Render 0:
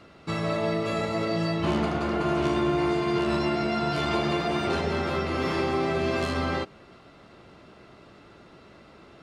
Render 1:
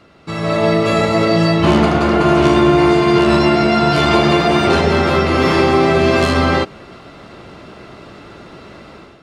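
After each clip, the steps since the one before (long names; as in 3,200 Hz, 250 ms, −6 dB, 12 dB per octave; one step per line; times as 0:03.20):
automatic gain control gain up to 11 dB
level +3 dB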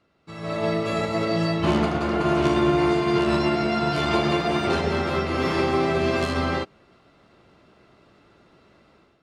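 expander for the loud parts 1.5 to 1, over −31 dBFS
level −8 dB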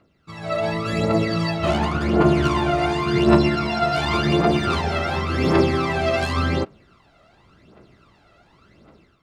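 phase shifter 0.9 Hz, delay 1.6 ms, feedback 65%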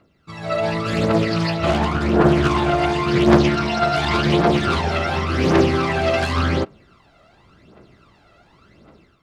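highs frequency-modulated by the lows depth 0.4 ms
level +2 dB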